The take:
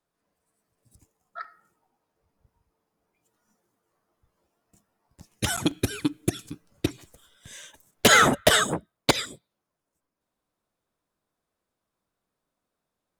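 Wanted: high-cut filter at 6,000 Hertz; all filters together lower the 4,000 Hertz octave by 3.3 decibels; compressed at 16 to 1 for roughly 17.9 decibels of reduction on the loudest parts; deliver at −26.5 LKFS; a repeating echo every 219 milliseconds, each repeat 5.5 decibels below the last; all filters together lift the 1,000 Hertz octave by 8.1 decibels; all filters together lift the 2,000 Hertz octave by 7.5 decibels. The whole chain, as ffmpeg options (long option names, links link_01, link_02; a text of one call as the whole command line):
ffmpeg -i in.wav -af "lowpass=6000,equalizer=frequency=1000:width_type=o:gain=9,equalizer=frequency=2000:width_type=o:gain=7.5,equalizer=frequency=4000:width_type=o:gain=-7.5,acompressor=threshold=-24dB:ratio=16,aecho=1:1:219|438|657|876|1095|1314|1533:0.531|0.281|0.149|0.079|0.0419|0.0222|0.0118,volume=5.5dB" out.wav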